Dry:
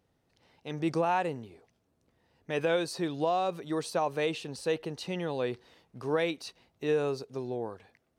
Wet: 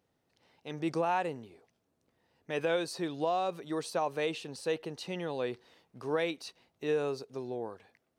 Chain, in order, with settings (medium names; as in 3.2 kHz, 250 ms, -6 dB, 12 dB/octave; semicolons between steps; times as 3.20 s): bass shelf 99 Hz -10 dB; trim -2 dB